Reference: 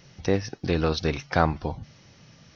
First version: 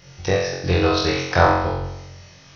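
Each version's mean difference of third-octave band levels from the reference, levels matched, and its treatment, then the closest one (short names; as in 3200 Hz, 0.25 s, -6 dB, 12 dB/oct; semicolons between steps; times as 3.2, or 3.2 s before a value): 5.5 dB: bell 230 Hz -13.5 dB 0.51 oct; on a send: flutter echo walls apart 3.8 m, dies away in 0.9 s; on the sum: gain +3.5 dB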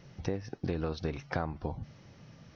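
4.0 dB: high shelf 2100 Hz -10.5 dB; compressor 6:1, threshold -30 dBFS, peak gain reduction 13.5 dB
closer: second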